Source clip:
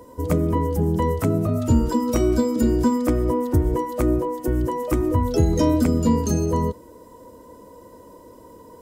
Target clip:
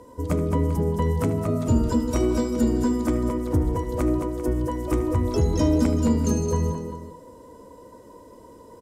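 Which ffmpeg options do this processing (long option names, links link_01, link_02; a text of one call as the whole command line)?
ffmpeg -i in.wav -af "lowpass=11000,bandreject=frequency=163.5:width_type=h:width=4,bandreject=frequency=327:width_type=h:width=4,bandreject=frequency=490.5:width_type=h:width=4,bandreject=frequency=654:width_type=h:width=4,bandreject=frequency=817.5:width_type=h:width=4,bandreject=frequency=981:width_type=h:width=4,bandreject=frequency=1144.5:width_type=h:width=4,bandreject=frequency=1308:width_type=h:width=4,bandreject=frequency=1471.5:width_type=h:width=4,bandreject=frequency=1635:width_type=h:width=4,bandreject=frequency=1798.5:width_type=h:width=4,bandreject=frequency=1962:width_type=h:width=4,bandreject=frequency=2125.5:width_type=h:width=4,bandreject=frequency=2289:width_type=h:width=4,bandreject=frequency=2452.5:width_type=h:width=4,bandreject=frequency=2616:width_type=h:width=4,bandreject=frequency=2779.5:width_type=h:width=4,bandreject=frequency=2943:width_type=h:width=4,bandreject=frequency=3106.5:width_type=h:width=4,bandreject=frequency=3270:width_type=h:width=4,bandreject=frequency=3433.5:width_type=h:width=4,bandreject=frequency=3597:width_type=h:width=4,bandreject=frequency=3760.5:width_type=h:width=4,bandreject=frequency=3924:width_type=h:width=4,bandreject=frequency=4087.5:width_type=h:width=4,bandreject=frequency=4251:width_type=h:width=4,bandreject=frequency=4414.5:width_type=h:width=4,bandreject=frequency=4578:width_type=h:width=4,bandreject=frequency=4741.5:width_type=h:width=4,bandreject=frequency=4905:width_type=h:width=4,bandreject=frequency=5068.5:width_type=h:width=4,bandreject=frequency=5232:width_type=h:width=4,bandreject=frequency=5395.5:width_type=h:width=4,bandreject=frequency=5559:width_type=h:width=4,bandreject=frequency=5722.5:width_type=h:width=4,bandreject=frequency=5886:width_type=h:width=4,bandreject=frequency=6049.5:width_type=h:width=4,acontrast=67,aecho=1:1:75|217|392:0.211|0.422|0.211,volume=-8.5dB" out.wav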